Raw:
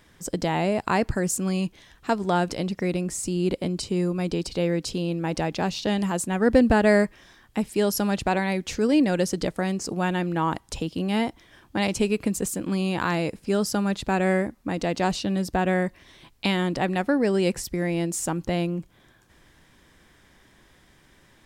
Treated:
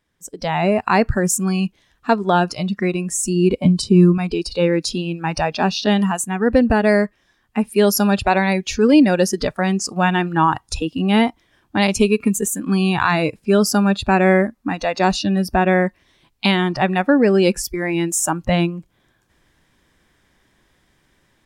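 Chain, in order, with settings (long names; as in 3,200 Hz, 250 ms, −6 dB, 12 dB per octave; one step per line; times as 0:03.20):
noise reduction from a noise print of the clip's start 15 dB
0:03.65–0:04.18: low-shelf EQ 240 Hz +11.5 dB
automatic gain control gain up to 12 dB
level −1 dB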